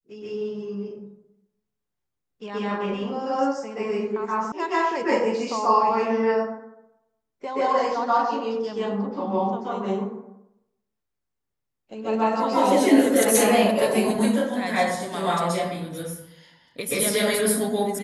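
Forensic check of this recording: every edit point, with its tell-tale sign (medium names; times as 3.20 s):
4.52 s: sound stops dead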